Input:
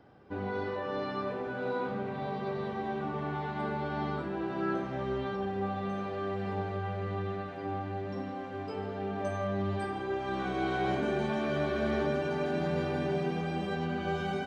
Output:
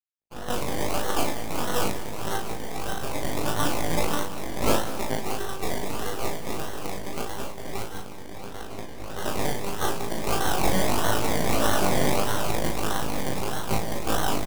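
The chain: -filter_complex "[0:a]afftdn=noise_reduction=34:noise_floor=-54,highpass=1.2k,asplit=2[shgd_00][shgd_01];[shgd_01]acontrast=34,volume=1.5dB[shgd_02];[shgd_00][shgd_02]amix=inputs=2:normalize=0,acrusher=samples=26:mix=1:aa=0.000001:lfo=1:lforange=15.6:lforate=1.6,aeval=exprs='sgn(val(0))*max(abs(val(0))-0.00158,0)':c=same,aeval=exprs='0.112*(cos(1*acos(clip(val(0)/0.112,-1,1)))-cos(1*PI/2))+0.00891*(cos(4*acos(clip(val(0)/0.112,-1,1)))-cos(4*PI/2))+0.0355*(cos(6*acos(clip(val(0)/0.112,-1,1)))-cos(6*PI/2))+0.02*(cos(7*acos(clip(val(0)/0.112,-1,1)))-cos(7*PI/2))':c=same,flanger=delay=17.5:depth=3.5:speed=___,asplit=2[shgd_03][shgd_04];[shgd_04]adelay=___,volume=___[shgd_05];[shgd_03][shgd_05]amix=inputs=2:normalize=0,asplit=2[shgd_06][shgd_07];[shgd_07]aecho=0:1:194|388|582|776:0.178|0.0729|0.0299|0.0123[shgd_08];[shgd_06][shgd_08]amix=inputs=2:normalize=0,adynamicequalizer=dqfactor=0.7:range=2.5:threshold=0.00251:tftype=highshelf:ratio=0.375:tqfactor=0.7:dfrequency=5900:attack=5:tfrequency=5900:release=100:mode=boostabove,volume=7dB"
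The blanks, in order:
0.79, 37, -4dB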